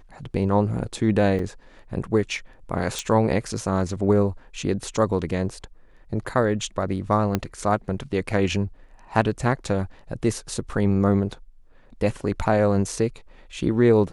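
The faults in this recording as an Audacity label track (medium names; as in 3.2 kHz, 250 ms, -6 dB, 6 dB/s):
1.390000	1.390000	dropout 3.4 ms
2.990000	2.990000	pop
7.350000	7.350000	pop -8 dBFS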